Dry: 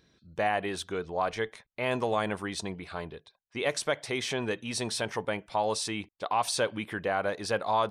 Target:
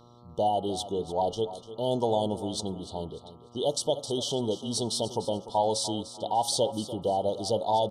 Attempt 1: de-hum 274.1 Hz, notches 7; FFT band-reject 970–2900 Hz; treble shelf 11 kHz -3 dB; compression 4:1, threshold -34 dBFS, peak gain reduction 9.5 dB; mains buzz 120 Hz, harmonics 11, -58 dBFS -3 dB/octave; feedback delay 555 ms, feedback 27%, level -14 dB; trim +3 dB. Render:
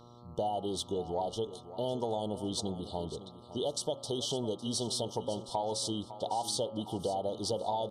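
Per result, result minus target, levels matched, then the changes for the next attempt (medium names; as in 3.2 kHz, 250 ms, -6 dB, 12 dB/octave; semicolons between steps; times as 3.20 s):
echo 259 ms late; compression: peak gain reduction +9.5 dB
change: feedback delay 296 ms, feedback 27%, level -14 dB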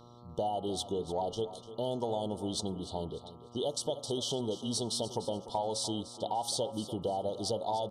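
compression: peak gain reduction +9.5 dB
remove: compression 4:1, threshold -34 dBFS, peak gain reduction 9.5 dB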